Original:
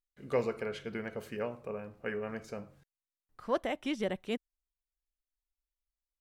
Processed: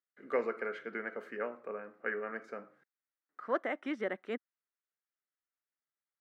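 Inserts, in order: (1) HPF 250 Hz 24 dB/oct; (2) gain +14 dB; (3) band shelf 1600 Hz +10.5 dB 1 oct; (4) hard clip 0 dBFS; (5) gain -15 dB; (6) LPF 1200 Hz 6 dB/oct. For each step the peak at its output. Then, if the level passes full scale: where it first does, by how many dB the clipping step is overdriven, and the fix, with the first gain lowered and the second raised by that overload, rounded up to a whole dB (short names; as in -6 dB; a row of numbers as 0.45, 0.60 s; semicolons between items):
-18.5, -4.5, -2.0, -2.0, -17.0, -19.5 dBFS; no overload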